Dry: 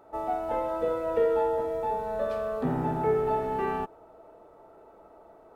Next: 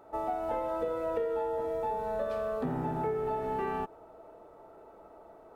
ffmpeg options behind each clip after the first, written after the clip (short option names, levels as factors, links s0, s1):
-af "acompressor=threshold=0.0355:ratio=6"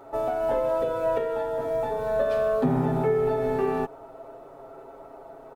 -af "aecho=1:1:7.4:0.79,volume=2.11"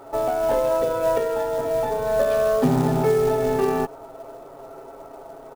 -af "acrusher=bits=5:mode=log:mix=0:aa=0.000001,volume=1.58"